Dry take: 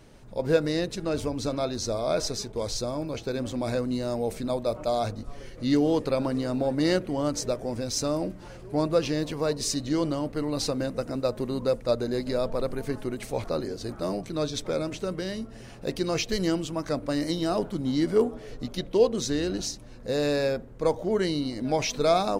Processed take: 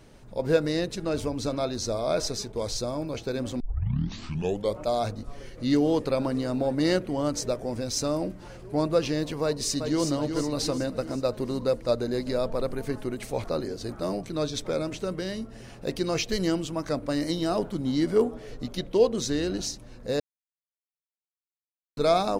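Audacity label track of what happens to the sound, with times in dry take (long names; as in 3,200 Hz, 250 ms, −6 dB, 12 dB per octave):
3.600000	3.600000	tape start 1.20 s
9.430000	10.040000	delay throw 370 ms, feedback 55%, level −6.5 dB
20.200000	21.970000	silence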